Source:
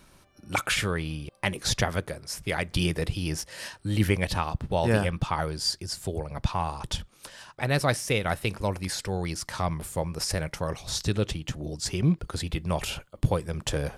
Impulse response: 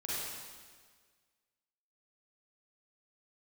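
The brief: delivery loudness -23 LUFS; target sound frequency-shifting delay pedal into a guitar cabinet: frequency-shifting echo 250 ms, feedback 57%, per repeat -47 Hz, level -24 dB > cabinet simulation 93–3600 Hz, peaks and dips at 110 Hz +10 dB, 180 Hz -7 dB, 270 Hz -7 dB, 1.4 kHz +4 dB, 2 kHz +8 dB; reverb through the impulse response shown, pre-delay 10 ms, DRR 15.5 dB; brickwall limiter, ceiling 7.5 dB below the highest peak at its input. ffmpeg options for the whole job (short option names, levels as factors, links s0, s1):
-filter_complex "[0:a]alimiter=limit=0.133:level=0:latency=1,asplit=2[s0][s1];[1:a]atrim=start_sample=2205,adelay=10[s2];[s1][s2]afir=irnorm=-1:irlink=0,volume=0.112[s3];[s0][s3]amix=inputs=2:normalize=0,asplit=5[s4][s5][s6][s7][s8];[s5]adelay=250,afreqshift=-47,volume=0.0631[s9];[s6]adelay=500,afreqshift=-94,volume=0.0359[s10];[s7]adelay=750,afreqshift=-141,volume=0.0204[s11];[s8]adelay=1000,afreqshift=-188,volume=0.0117[s12];[s4][s9][s10][s11][s12]amix=inputs=5:normalize=0,highpass=93,equalizer=f=110:t=q:w=4:g=10,equalizer=f=180:t=q:w=4:g=-7,equalizer=f=270:t=q:w=4:g=-7,equalizer=f=1400:t=q:w=4:g=4,equalizer=f=2000:t=q:w=4:g=8,lowpass=f=3600:w=0.5412,lowpass=f=3600:w=1.3066,volume=2.37"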